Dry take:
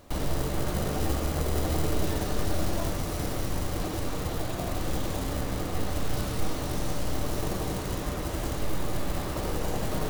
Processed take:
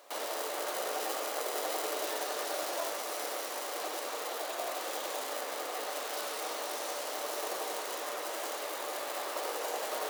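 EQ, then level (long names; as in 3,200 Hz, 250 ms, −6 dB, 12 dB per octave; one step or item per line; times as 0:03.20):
high-pass filter 480 Hz 24 dB per octave
0.0 dB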